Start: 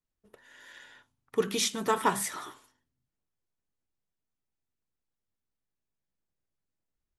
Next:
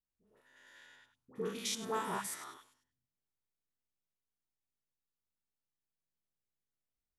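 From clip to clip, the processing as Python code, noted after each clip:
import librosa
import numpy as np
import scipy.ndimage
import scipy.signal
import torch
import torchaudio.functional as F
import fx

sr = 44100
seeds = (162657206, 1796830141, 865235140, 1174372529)

y = fx.spec_steps(x, sr, hold_ms=100)
y = fx.dispersion(y, sr, late='highs', ms=77.0, hz=940.0)
y = y * 10.0 ** (-6.5 / 20.0)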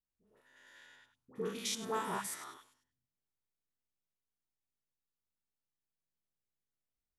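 y = x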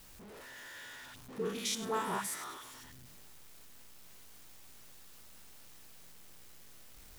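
y = x + 0.5 * 10.0 ** (-47.0 / 20.0) * np.sign(x)
y = y * 10.0 ** (1.0 / 20.0)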